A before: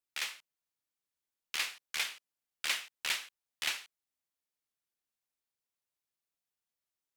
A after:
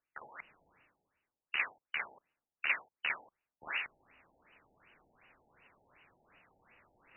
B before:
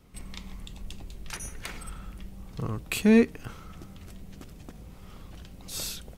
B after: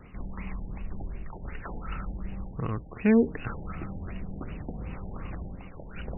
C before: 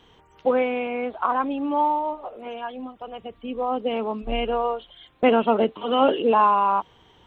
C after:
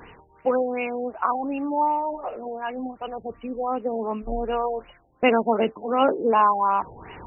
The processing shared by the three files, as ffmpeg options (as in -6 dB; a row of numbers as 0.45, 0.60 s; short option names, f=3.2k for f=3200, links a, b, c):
-af "highshelf=f=2.2k:g=8,areverse,acompressor=mode=upward:threshold=-22dB:ratio=2.5,areverse,aemphasis=mode=production:type=50kf,afftfilt=real='re*lt(b*sr/1024,880*pow(3000/880,0.5+0.5*sin(2*PI*2.7*pts/sr)))':imag='im*lt(b*sr/1024,880*pow(3000/880,0.5+0.5*sin(2*PI*2.7*pts/sr)))':win_size=1024:overlap=0.75,volume=-2dB"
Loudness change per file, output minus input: -1.5, -5.5, -1.5 LU